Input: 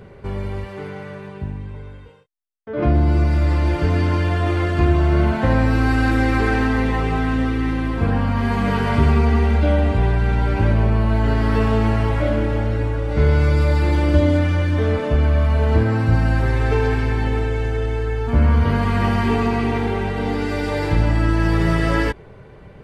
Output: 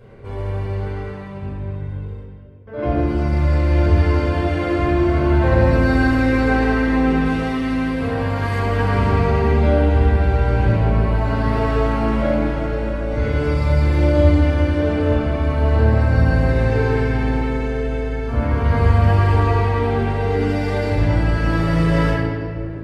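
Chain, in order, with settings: 7.25–8.59 s: tilt EQ +2 dB/octave; 18.91–19.99 s: comb of notches 210 Hz; reverberation RT60 2.5 s, pre-delay 4 ms, DRR -7 dB; trim -9 dB

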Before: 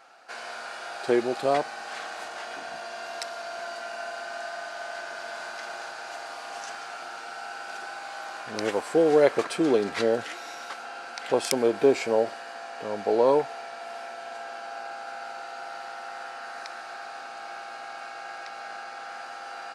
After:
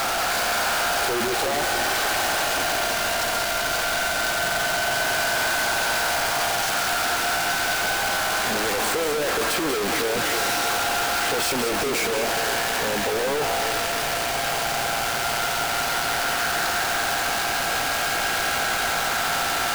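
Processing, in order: one-bit comparator; peaking EQ 130 Hz -2 dB 1.6 oct; two-band feedback delay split 520 Hz, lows 306 ms, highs 190 ms, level -7.5 dB; trim +5.5 dB

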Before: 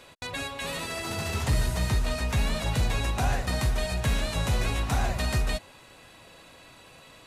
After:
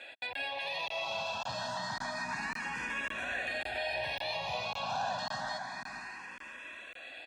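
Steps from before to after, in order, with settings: high-pass 290 Hz 12 dB/octave; bass shelf 400 Hz -10.5 dB; peak limiter -32.5 dBFS, peak gain reduction 12 dB; low-pass 3.6 kHz 12 dB/octave; comb 1.2 ms, depth 67%; echo that smears into a reverb 525 ms, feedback 41%, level -6 dB; crackling interface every 0.55 s, samples 1024, zero, from 0.33 s; barber-pole phaser +0.28 Hz; trim +6.5 dB

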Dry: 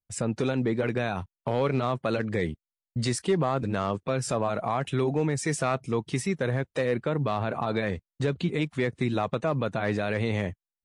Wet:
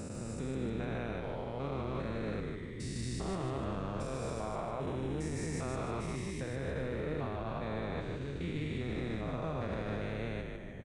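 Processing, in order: spectrogram pixelated in time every 400 ms; peak limiter -25 dBFS, peak gain reduction 7 dB; frequency-shifting echo 151 ms, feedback 44%, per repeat -62 Hz, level -4 dB; trim -4.5 dB

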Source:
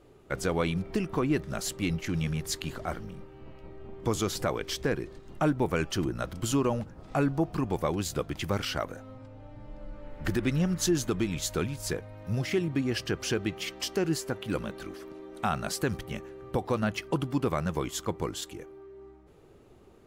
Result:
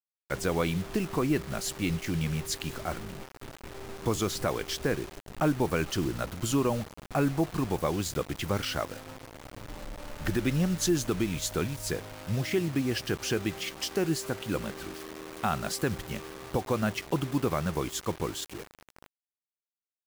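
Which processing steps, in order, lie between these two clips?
bit crusher 7-bit

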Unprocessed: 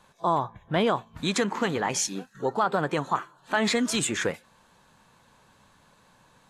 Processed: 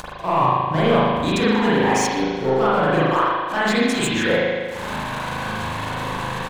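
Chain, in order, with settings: in parallel at +1.5 dB: upward compressor, threshold -28 dBFS; on the sum: waveshaping leveller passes 2; transient shaper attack +4 dB, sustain -10 dB; reverse; compression 6:1, threshold -26 dBFS, peak gain reduction 18 dB; reverse; crossover distortion -52.5 dBFS; speakerphone echo 120 ms, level -8 dB; spring tank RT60 1.6 s, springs 38 ms, chirp 40 ms, DRR -9.5 dB

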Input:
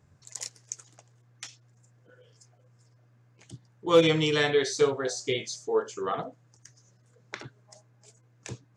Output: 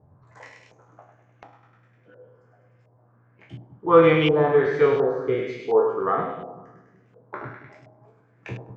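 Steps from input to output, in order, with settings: spectral sustain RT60 0.41 s; on a send: two-band feedback delay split 330 Hz, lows 186 ms, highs 101 ms, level -8 dB; on the sum: LFO low-pass saw up 1.4 Hz 720–2800 Hz; treble shelf 2 kHz -10 dB; trim +4 dB

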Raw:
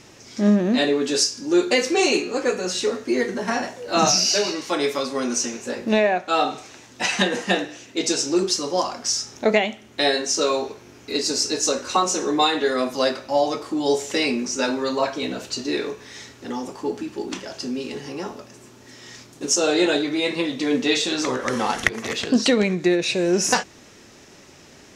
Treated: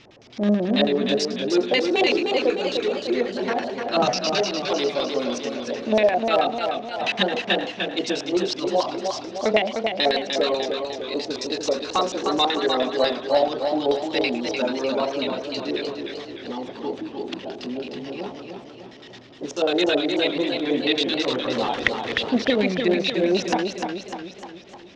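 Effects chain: LFO low-pass square 9.2 Hz 670–3500 Hz; modulated delay 302 ms, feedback 54%, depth 85 cents, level -5.5 dB; trim -4 dB

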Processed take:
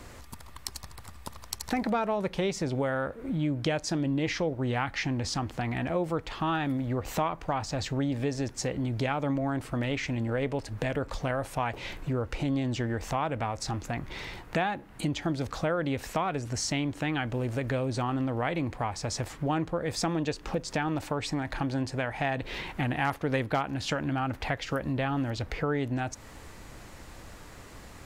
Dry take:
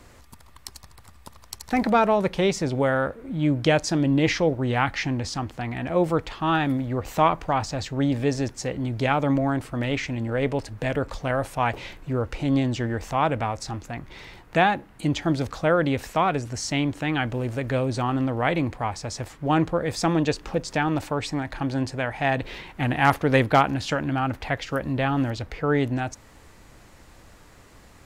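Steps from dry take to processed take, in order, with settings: compression 3:1, threshold -33 dBFS, peak gain reduction 15.5 dB; trim +3.5 dB

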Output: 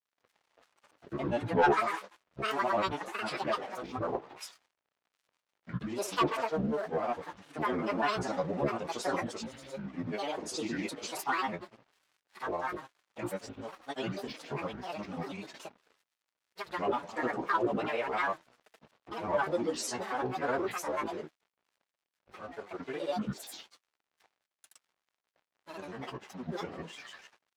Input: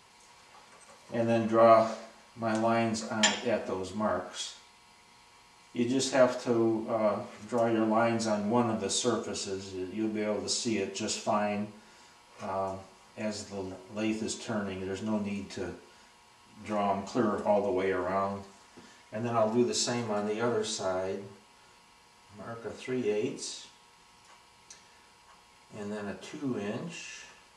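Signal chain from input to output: crossover distortion -51.5 dBFS; overdrive pedal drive 14 dB, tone 2 kHz, clips at -9.5 dBFS; granulator, pitch spread up and down by 12 st; trim -5 dB

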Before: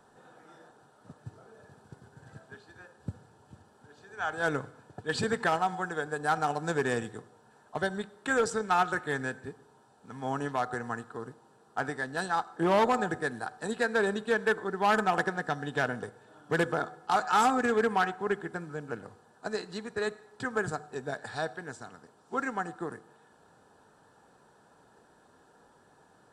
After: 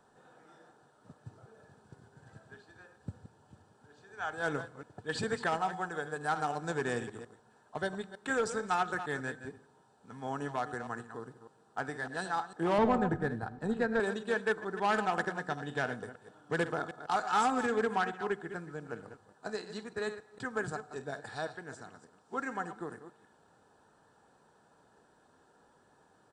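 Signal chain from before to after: chunks repeated in reverse 151 ms, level -11 dB; resampled via 22.05 kHz; 12.78–14.00 s: RIAA curve playback; trim -4.5 dB

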